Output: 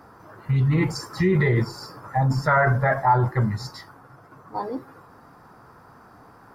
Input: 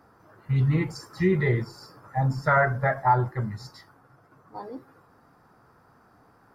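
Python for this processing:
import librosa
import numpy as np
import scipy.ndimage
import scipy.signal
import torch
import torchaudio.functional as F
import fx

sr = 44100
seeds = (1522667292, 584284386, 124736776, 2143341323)

p1 = fx.peak_eq(x, sr, hz=1000.0, db=3.0, octaves=0.42)
p2 = fx.over_compress(p1, sr, threshold_db=-26.0, ratio=-0.5)
y = p1 + (p2 * librosa.db_to_amplitude(-1.0))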